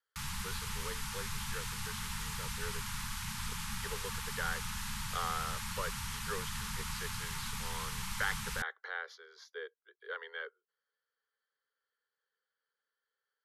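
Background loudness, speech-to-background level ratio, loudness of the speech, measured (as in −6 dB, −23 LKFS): −39.5 LKFS, −4.0 dB, −43.5 LKFS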